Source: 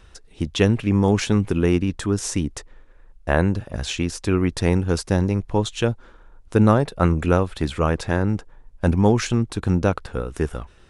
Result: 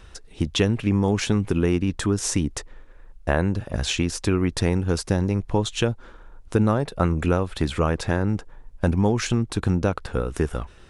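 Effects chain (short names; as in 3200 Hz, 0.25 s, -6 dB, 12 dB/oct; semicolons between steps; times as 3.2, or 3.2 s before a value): compressor 2.5:1, threshold -22 dBFS, peak gain reduction 8.5 dB; gain +3 dB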